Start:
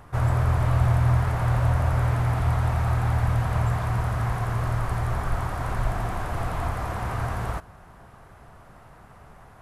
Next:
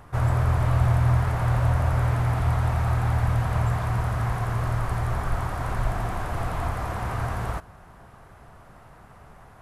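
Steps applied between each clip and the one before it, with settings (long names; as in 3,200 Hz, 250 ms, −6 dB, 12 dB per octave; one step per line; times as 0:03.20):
no processing that can be heard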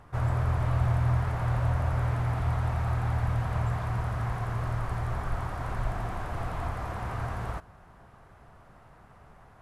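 high-shelf EQ 8,100 Hz −7.5 dB
level −5 dB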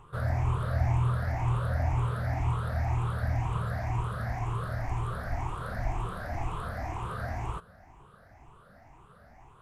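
rippled gain that drifts along the octave scale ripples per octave 0.68, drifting +2 Hz, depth 15 dB
level −3.5 dB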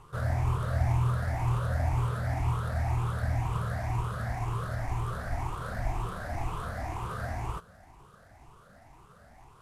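variable-slope delta modulation 64 kbit/s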